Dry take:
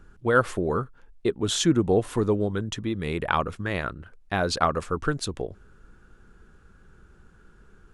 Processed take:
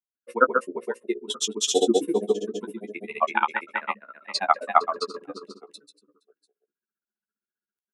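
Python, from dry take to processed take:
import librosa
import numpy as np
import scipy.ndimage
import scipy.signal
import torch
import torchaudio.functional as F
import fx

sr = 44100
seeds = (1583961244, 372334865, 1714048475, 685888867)

p1 = fx.bin_expand(x, sr, power=2.0)
p2 = fx.rider(p1, sr, range_db=3, speed_s=2.0)
p3 = p1 + (p2 * librosa.db_to_amplitude(2.5))
p4 = scipy.signal.sosfilt(scipy.signal.butter(8, 220.0, 'highpass', fs=sr, output='sos'), p3)
p5 = fx.hum_notches(p4, sr, base_hz=60, count=10)
p6 = p5 + fx.echo_feedback(p5, sr, ms=389, feedback_pct=18, wet_db=-7.0, dry=0)
p7 = fx.quant_float(p6, sr, bits=8)
p8 = fx.granulator(p7, sr, seeds[0], grain_ms=69.0, per_s=15.0, spray_ms=213.0, spread_st=0)
y = fx.doubler(p8, sr, ms=14.0, db=-9)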